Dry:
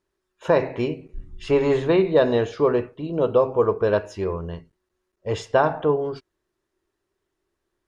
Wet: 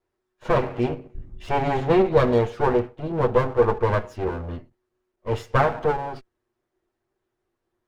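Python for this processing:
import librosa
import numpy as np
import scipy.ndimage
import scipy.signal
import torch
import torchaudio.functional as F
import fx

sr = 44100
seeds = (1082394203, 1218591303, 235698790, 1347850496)

y = fx.lower_of_two(x, sr, delay_ms=8.4)
y = fx.high_shelf(y, sr, hz=2400.0, db=-9.5)
y = F.gain(torch.from_numpy(y), 2.0).numpy()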